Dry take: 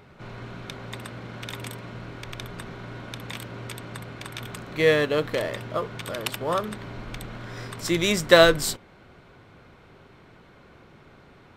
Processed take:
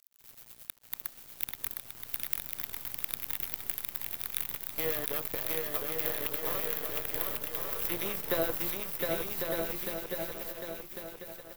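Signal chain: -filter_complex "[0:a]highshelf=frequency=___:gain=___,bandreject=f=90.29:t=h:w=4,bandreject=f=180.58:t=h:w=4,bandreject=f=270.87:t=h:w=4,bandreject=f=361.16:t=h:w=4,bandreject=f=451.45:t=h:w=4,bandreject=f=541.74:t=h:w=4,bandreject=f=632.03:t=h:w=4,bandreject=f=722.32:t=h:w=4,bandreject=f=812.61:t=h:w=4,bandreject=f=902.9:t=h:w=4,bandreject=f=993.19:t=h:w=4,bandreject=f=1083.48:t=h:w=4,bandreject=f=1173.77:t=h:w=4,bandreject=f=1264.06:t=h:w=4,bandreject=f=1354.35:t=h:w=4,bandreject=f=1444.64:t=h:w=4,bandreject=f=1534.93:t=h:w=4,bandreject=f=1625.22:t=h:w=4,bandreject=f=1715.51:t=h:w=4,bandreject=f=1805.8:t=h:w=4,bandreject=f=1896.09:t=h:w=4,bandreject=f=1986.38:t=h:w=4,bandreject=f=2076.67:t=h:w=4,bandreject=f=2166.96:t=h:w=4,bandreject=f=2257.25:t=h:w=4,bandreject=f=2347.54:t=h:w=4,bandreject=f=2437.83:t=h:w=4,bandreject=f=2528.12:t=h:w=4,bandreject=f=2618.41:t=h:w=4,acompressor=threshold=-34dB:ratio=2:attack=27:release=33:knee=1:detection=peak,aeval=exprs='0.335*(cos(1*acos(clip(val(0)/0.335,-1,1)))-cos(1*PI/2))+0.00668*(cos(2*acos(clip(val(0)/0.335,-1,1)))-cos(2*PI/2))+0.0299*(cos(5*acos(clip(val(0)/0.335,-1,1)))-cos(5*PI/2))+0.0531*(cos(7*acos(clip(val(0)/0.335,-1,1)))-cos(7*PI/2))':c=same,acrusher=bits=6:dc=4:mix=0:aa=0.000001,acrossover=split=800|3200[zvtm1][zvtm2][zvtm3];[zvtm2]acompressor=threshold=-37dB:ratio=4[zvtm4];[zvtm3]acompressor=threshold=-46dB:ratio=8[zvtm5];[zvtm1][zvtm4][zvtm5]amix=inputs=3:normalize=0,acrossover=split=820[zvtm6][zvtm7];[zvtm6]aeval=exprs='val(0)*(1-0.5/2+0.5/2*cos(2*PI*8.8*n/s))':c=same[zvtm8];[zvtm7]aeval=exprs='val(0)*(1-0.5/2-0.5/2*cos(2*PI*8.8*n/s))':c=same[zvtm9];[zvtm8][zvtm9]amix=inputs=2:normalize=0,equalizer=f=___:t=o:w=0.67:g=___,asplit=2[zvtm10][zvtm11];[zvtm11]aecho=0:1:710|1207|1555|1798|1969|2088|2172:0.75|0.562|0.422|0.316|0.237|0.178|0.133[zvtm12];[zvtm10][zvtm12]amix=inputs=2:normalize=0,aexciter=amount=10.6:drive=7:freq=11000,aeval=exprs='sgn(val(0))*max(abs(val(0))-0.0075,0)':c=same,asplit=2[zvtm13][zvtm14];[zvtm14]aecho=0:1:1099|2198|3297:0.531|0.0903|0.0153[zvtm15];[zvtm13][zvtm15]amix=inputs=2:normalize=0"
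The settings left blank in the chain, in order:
3300, 6.5, 180, -3.5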